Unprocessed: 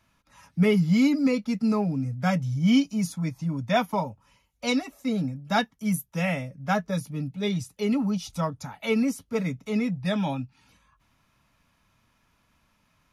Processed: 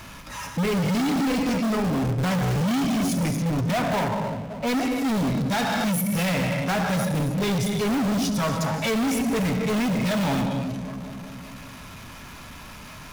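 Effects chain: 3.71–4.77 s: distance through air 450 m; gated-style reverb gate 320 ms flat, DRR 6.5 dB; 1.62–2.28 s: compression 4:1, threshold -25 dBFS, peak gain reduction 5.5 dB; on a send: feedback echo behind a low-pass 193 ms, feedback 57%, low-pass 600 Hz, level -17.5 dB; on the sum: peak limiter -18.5 dBFS, peak gain reduction 10 dB; power-law waveshaper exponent 0.5; in parallel at -10.5 dB: integer overflow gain 22 dB

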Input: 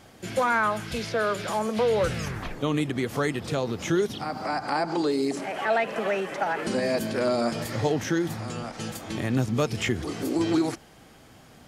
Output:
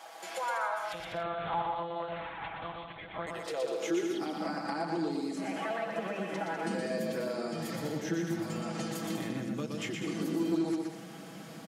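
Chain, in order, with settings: compression 6:1, threshold -38 dBFS, peak gain reduction 17.5 dB; high-pass sweep 770 Hz -> 200 Hz, 3.07–4.59 s; 0.92–3.27 s: monotone LPC vocoder at 8 kHz 170 Hz; high-pass 55 Hz; comb 6.1 ms; bouncing-ball echo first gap 120 ms, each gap 0.65×, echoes 5

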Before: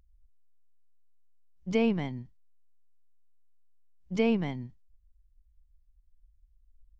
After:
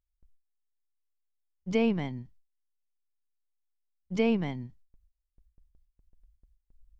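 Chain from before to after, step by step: gate with hold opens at -53 dBFS

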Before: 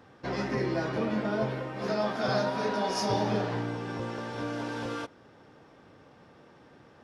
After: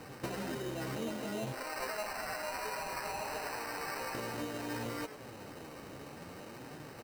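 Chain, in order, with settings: 1.52–4.15 s: high-pass 780 Hz 12 dB/octave; peak limiter -27.5 dBFS, peak gain reduction 9 dB; compression 12:1, threshold -43 dBFS, peak gain reduction 12 dB; flange 0.59 Hz, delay 6.1 ms, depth 9.3 ms, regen +44%; sample-and-hold 13×; frequency-shifting echo 103 ms, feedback 37%, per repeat +130 Hz, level -12 dB; trim +11 dB

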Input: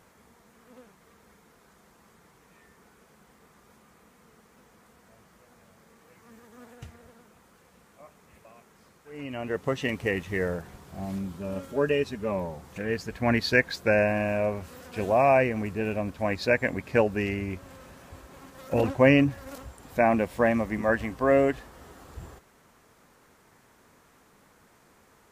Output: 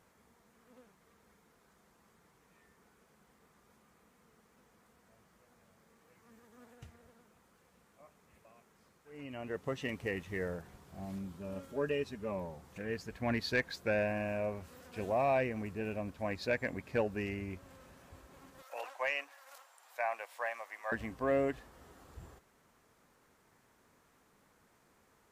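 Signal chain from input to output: 18.62–20.92 s: high-pass 710 Hz 24 dB/octave; saturation -10.5 dBFS, distortion -23 dB; trim -9 dB

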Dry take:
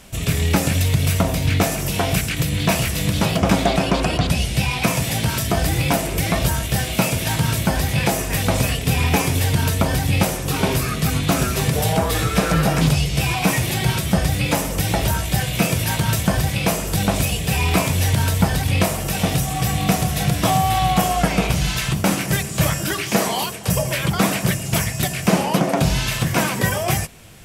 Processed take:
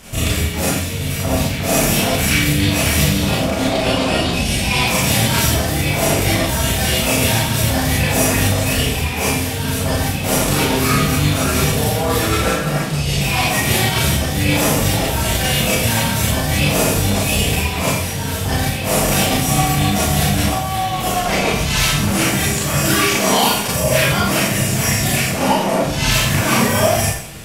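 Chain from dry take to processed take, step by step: compressor with a negative ratio -23 dBFS, ratio -1; Chebyshev shaper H 6 -28 dB, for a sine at -6.5 dBFS; Schroeder reverb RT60 0.61 s, combs from 27 ms, DRR -7 dB; trim -1 dB

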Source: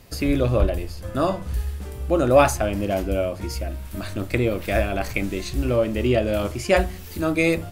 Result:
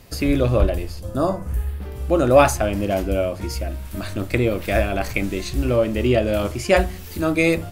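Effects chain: 0.99–1.95 s: peaking EQ 1.6 kHz -> 9 kHz -14.5 dB 1.1 oct; trim +2 dB

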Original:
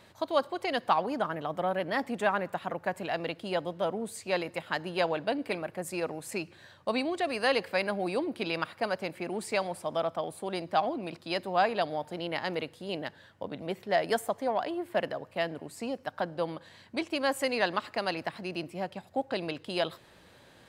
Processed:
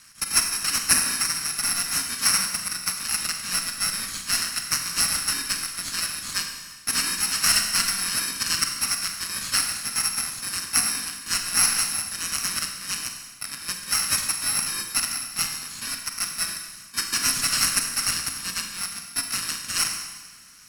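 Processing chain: bit-reversed sample order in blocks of 64 samples; frequency weighting ITU-R 468; in parallel at -5 dB: sample-rate reducer 3.4 kHz, jitter 0%; on the sum: high-order bell 570 Hz -15 dB; Schroeder reverb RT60 1.3 s, combs from 33 ms, DRR 4 dB

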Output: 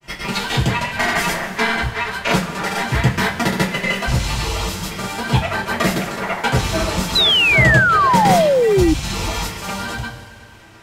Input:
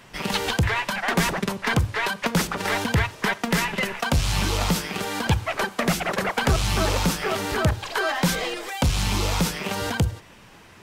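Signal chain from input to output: transient shaper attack +5 dB, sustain -6 dB; in parallel at -8 dB: hard clipper -11 dBFS, distortion -18 dB; on the sum: granulator, pitch spread up and down by 0 st; two-slope reverb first 0.23 s, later 2.6 s, from -19 dB, DRR -7.5 dB; painted sound fall, 7.15–8.94 s, 300–4100 Hz -7 dBFS; trim -7 dB

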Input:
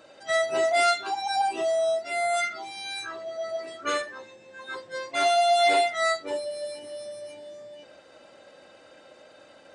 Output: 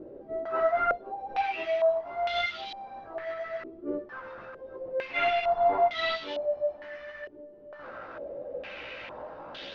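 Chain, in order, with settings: one-bit delta coder 32 kbps, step -33 dBFS; chorus voices 2, 0.76 Hz, delay 16 ms, depth 2.3 ms; step-sequenced low-pass 2.2 Hz 380–3400 Hz; trim -2.5 dB

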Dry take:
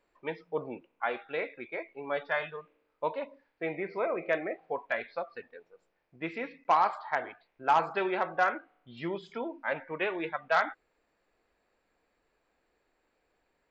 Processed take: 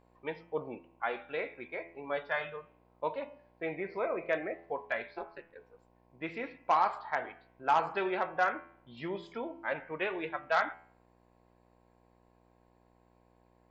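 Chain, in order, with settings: mains buzz 60 Hz, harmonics 18, -64 dBFS -2 dB/octave; 5.13–5.54 s: ring modulator 200 Hz -> 44 Hz; de-hum 83.94 Hz, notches 38; trim -2 dB

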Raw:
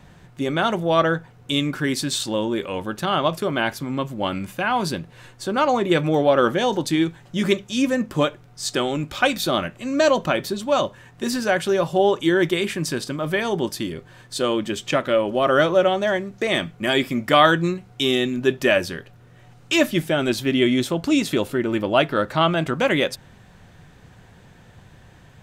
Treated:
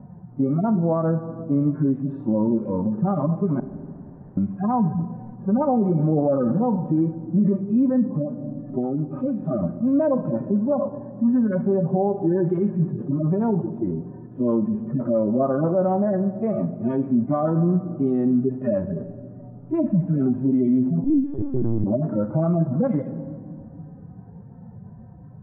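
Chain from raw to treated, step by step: harmonic-percussive separation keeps harmonic; peaking EQ 220 Hz +12 dB 1 oct; 3.60–4.37 s: room tone; reverberation RT60 1.9 s, pre-delay 44 ms, DRR 14.5 dB; 8.08–9.63 s: compression 4:1, threshold -22 dBFS, peak gain reduction 8.5 dB; 21.04–21.84 s: LPC vocoder at 8 kHz pitch kept; dynamic bell 320 Hz, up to -6 dB, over -25 dBFS, Q 0.73; peak limiter -15 dBFS, peak gain reduction 9.5 dB; low-pass 1 kHz 24 dB/octave; trim +2.5 dB

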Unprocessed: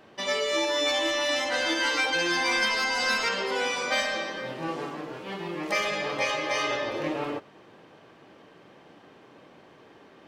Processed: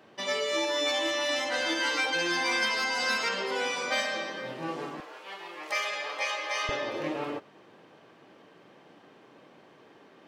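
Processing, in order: high-pass 100 Hz 12 dB/octave, from 5.00 s 700 Hz, from 6.69 s 120 Hz; trim -2.5 dB

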